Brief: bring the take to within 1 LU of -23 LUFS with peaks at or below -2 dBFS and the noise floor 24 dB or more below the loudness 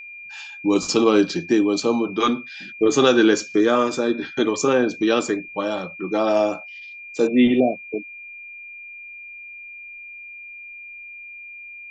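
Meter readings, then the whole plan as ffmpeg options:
steady tone 2400 Hz; tone level -36 dBFS; loudness -20.0 LUFS; peak -2.5 dBFS; loudness target -23.0 LUFS
-> -af "bandreject=f=2.4k:w=30"
-af "volume=-3dB"

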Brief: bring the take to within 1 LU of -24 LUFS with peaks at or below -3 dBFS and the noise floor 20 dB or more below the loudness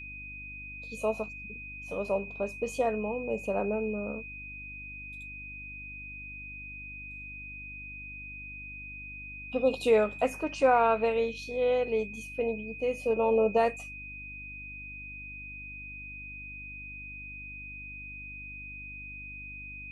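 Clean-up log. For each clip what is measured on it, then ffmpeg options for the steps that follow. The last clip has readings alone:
hum 50 Hz; harmonics up to 300 Hz; hum level -46 dBFS; steady tone 2500 Hz; tone level -41 dBFS; loudness -32.5 LUFS; peak -12.0 dBFS; loudness target -24.0 LUFS
-> -af "bandreject=f=50:t=h:w=4,bandreject=f=100:t=h:w=4,bandreject=f=150:t=h:w=4,bandreject=f=200:t=h:w=4,bandreject=f=250:t=h:w=4,bandreject=f=300:t=h:w=4"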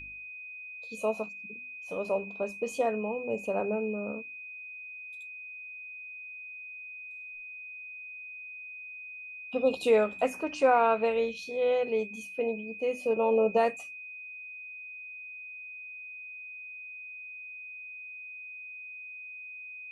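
hum none; steady tone 2500 Hz; tone level -41 dBFS
-> -af "bandreject=f=2.5k:w=30"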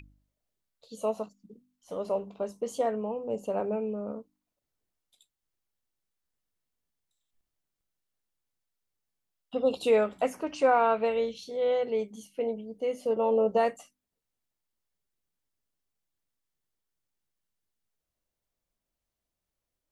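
steady tone none; loudness -29.5 LUFS; peak -12.5 dBFS; loudness target -24.0 LUFS
-> -af "volume=5.5dB"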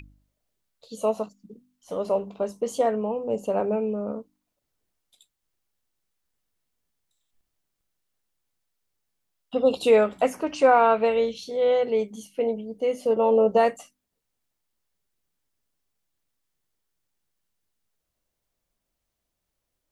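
loudness -24.0 LUFS; peak -7.0 dBFS; noise floor -81 dBFS

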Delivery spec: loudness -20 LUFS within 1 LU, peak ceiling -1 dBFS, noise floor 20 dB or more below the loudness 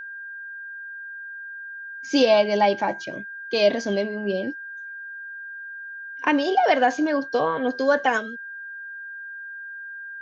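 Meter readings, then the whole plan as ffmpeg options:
steady tone 1600 Hz; tone level -34 dBFS; loudness -22.5 LUFS; peak -7.0 dBFS; loudness target -20.0 LUFS
-> -af "bandreject=f=1.6k:w=30"
-af "volume=2.5dB"

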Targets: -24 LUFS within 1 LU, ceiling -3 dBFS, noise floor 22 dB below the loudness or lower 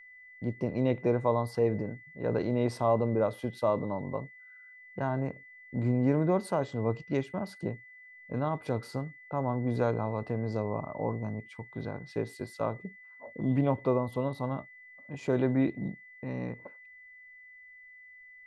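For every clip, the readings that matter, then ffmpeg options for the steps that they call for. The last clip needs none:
steady tone 2000 Hz; tone level -50 dBFS; loudness -31.5 LUFS; peak -13.5 dBFS; loudness target -24.0 LUFS
-> -af "bandreject=f=2k:w=30"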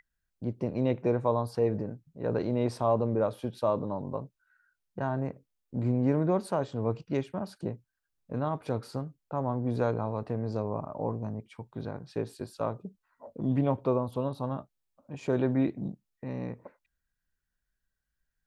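steady tone none; loudness -31.5 LUFS; peak -13.5 dBFS; loudness target -24.0 LUFS
-> -af "volume=7.5dB"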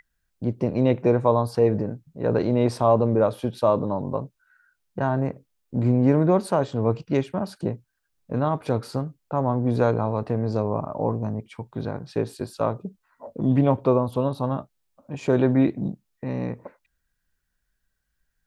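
loudness -24.0 LUFS; peak -6.0 dBFS; noise floor -76 dBFS

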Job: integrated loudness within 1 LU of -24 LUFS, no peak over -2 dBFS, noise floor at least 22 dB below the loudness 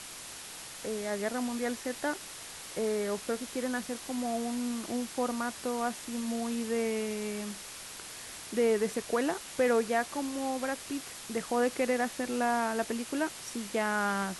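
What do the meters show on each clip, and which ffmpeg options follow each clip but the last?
noise floor -45 dBFS; noise floor target -55 dBFS; loudness -33.0 LUFS; peak -16.5 dBFS; loudness target -24.0 LUFS
-> -af "afftdn=nr=10:nf=-45"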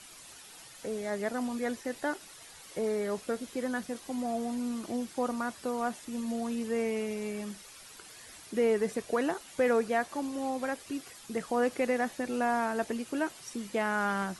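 noise floor -51 dBFS; noise floor target -55 dBFS
-> -af "afftdn=nr=6:nf=-51"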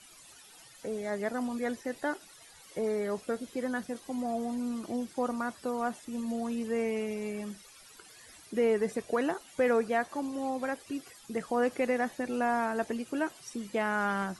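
noise floor -55 dBFS; loudness -33.0 LUFS; peak -17.0 dBFS; loudness target -24.0 LUFS
-> -af "volume=9dB"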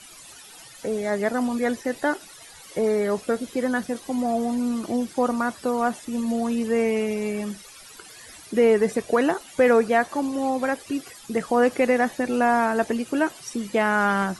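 loudness -24.0 LUFS; peak -8.0 dBFS; noise floor -46 dBFS

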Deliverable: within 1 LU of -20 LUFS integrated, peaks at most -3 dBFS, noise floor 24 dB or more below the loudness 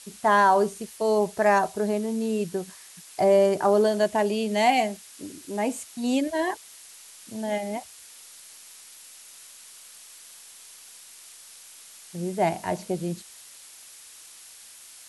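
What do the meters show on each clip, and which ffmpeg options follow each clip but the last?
noise floor -48 dBFS; noise floor target -49 dBFS; loudness -24.5 LUFS; peak -8.5 dBFS; loudness target -20.0 LUFS
-> -af "afftdn=nr=6:nf=-48"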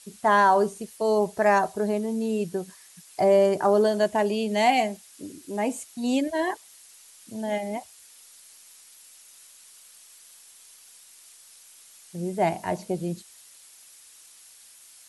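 noise floor -52 dBFS; loudness -24.5 LUFS; peak -8.5 dBFS; loudness target -20.0 LUFS
-> -af "volume=4.5dB"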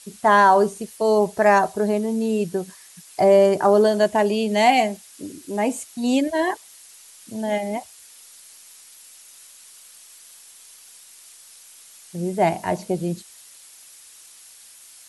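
loudness -20.0 LUFS; peak -4.0 dBFS; noise floor -47 dBFS

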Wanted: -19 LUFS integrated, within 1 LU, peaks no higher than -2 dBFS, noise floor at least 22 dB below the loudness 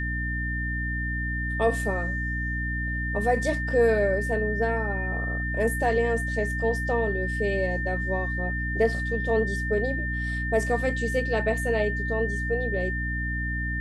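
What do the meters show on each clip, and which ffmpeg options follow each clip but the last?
hum 60 Hz; harmonics up to 300 Hz; hum level -28 dBFS; steady tone 1800 Hz; tone level -30 dBFS; loudness -26.5 LUFS; peak -11.0 dBFS; loudness target -19.0 LUFS
-> -af "bandreject=f=60:t=h:w=6,bandreject=f=120:t=h:w=6,bandreject=f=180:t=h:w=6,bandreject=f=240:t=h:w=6,bandreject=f=300:t=h:w=6"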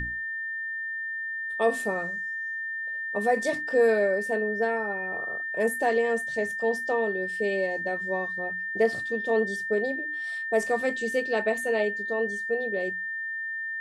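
hum none; steady tone 1800 Hz; tone level -30 dBFS
-> -af "bandreject=f=1.8k:w=30"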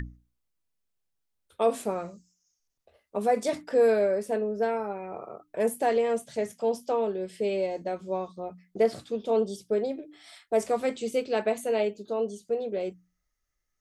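steady tone none; loudness -28.5 LUFS; peak -13.0 dBFS; loudness target -19.0 LUFS
-> -af "volume=9.5dB"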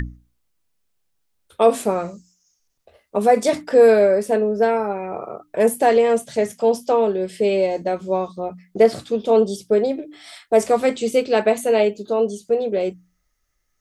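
loudness -19.0 LUFS; peak -3.5 dBFS; noise floor -70 dBFS

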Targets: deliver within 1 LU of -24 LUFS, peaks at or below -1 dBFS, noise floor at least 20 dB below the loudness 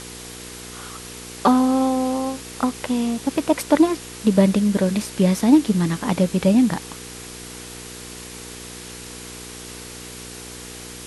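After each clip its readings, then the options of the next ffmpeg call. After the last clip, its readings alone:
hum 60 Hz; harmonics up to 480 Hz; hum level -41 dBFS; noise floor -37 dBFS; noise floor target -40 dBFS; loudness -19.5 LUFS; peak -3.5 dBFS; loudness target -24.0 LUFS
-> -af "bandreject=f=60:t=h:w=4,bandreject=f=120:t=h:w=4,bandreject=f=180:t=h:w=4,bandreject=f=240:t=h:w=4,bandreject=f=300:t=h:w=4,bandreject=f=360:t=h:w=4,bandreject=f=420:t=h:w=4,bandreject=f=480:t=h:w=4"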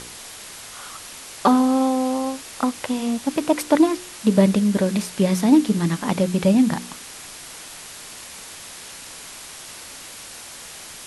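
hum none; noise floor -39 dBFS; noise floor target -40 dBFS
-> -af "afftdn=nr=6:nf=-39"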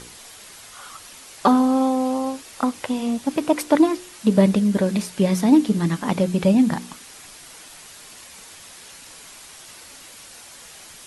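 noise floor -43 dBFS; loudness -20.0 LUFS; peak -4.5 dBFS; loudness target -24.0 LUFS
-> -af "volume=-4dB"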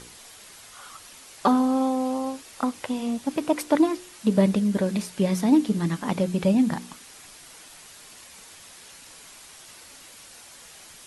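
loudness -24.0 LUFS; peak -8.5 dBFS; noise floor -47 dBFS

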